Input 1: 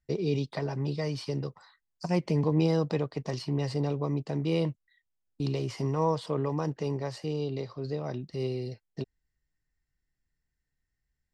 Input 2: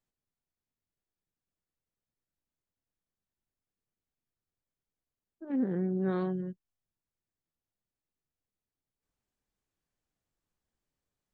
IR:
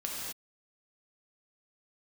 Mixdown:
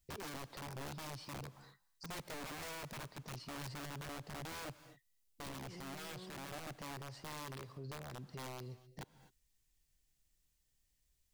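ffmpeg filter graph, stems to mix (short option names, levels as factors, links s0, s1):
-filter_complex "[0:a]lowshelf=f=110:g=9,aeval=exprs='(mod(16.8*val(0)+1,2)-1)/16.8':c=same,volume=0.473,asplit=2[s0][s1];[s1]volume=0.0794[s2];[1:a]acompressor=threshold=0.0141:ratio=6,aexciter=amount=4.2:drive=5.3:freq=2200,volume=0.562[s3];[2:a]atrim=start_sample=2205[s4];[s2][s4]afir=irnorm=-1:irlink=0[s5];[s0][s3][s5]amix=inputs=3:normalize=0,alimiter=level_in=6.68:limit=0.0631:level=0:latency=1:release=209,volume=0.15"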